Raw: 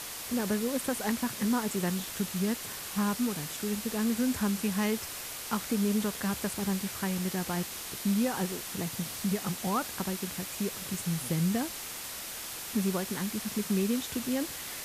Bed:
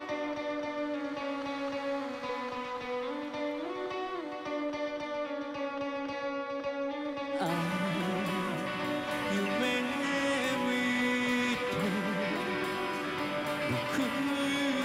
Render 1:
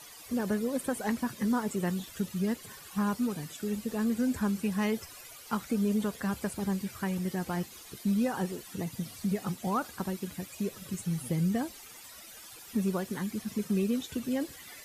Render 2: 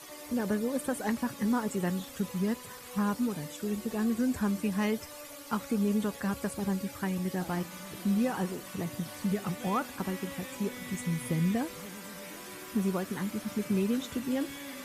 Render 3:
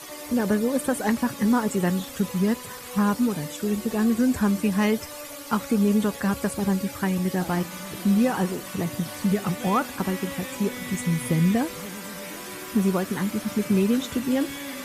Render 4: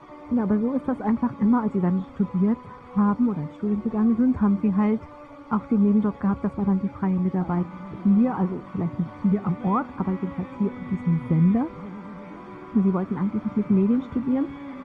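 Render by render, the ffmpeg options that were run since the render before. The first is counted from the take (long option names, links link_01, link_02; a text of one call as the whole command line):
ffmpeg -i in.wav -af "afftdn=noise_reduction=14:noise_floor=-40" out.wav
ffmpeg -i in.wav -i bed.wav -filter_complex "[1:a]volume=-13.5dB[link_01];[0:a][link_01]amix=inputs=2:normalize=0" out.wav
ffmpeg -i in.wav -af "volume=7.5dB" out.wav
ffmpeg -i in.wav -af "lowpass=1100,aecho=1:1:0.9:0.42" out.wav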